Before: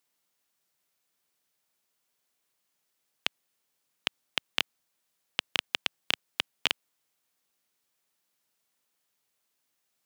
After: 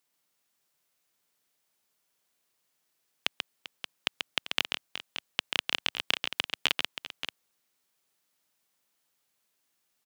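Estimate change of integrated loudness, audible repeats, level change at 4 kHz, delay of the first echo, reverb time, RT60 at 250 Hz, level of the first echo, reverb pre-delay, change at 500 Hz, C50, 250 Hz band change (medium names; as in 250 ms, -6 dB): +0.5 dB, 3, +1.5 dB, 137 ms, no reverb, no reverb, -5.0 dB, no reverb, +1.5 dB, no reverb, +1.5 dB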